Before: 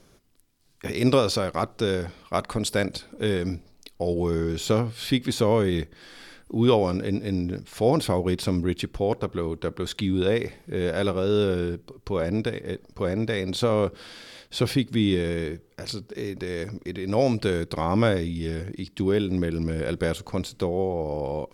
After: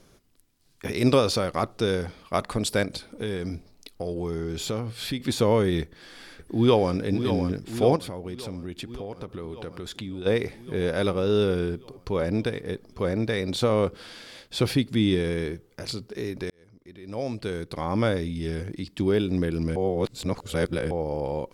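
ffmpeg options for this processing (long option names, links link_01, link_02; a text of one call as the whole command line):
ffmpeg -i in.wav -filter_complex "[0:a]asettb=1/sr,asplit=3[link_01][link_02][link_03];[link_01]atrim=end=2.834[link_04];[link_02]atrim=start=2.83:end=5.2,asetpts=PTS-STARTPTS,afade=type=in:duration=0.004:curve=qsin,afade=type=out:start_time=2.366:duration=0.004:curve=qsin,acompressor=threshold=-28dB:ratio=2.5:attack=3.2:release=140:knee=1:detection=peak[link_05];[link_03]atrim=start=5.196[link_06];[link_04][link_05]acrossfade=duration=0.004:curve1=hsin:curve2=qsin[link_07];[link_07][link_06]acrossfade=duration=0.004:curve1=qsin:curve2=hsin,asplit=2[link_08][link_09];[link_09]afade=type=in:start_time=5.82:duration=0.01,afade=type=out:start_time=6.95:duration=0.01,aecho=0:1:570|1140|1710|2280|2850|3420|3990|4560|5130|5700|6270:0.398107|0.278675|0.195073|0.136551|0.0955855|0.0669099|0.0468369|0.0327858|0.0229501|0.0160651|0.0112455[link_10];[link_08][link_10]amix=inputs=2:normalize=0,asplit=3[link_11][link_12][link_13];[link_11]afade=type=out:start_time=7.95:duration=0.02[link_14];[link_12]acompressor=threshold=-33dB:ratio=4:attack=3.2:release=140:knee=1:detection=peak,afade=type=in:start_time=7.95:duration=0.02,afade=type=out:start_time=10.25:duration=0.02[link_15];[link_13]afade=type=in:start_time=10.25:duration=0.02[link_16];[link_14][link_15][link_16]amix=inputs=3:normalize=0,asplit=4[link_17][link_18][link_19][link_20];[link_17]atrim=end=16.5,asetpts=PTS-STARTPTS,afade=type=out:start_time=16.496:duration=0.004:curve=hsin[link_21];[link_18]atrim=start=16.5:end=19.762,asetpts=PTS-STARTPTS,afade=type=in:duration=2.09[link_22];[link_19]atrim=start=19.758:end=20.912,asetpts=PTS-STARTPTS,areverse[link_23];[link_20]atrim=start=20.908[link_24];[link_21][link_22]concat=n=2:v=0:a=1[link_25];[link_25][link_23]acrossfade=duration=0.004:curve1=hsin:curve2=hsin[link_26];[link_26][link_24]acrossfade=duration=0.004:curve1=hsin:curve2=hsin" out.wav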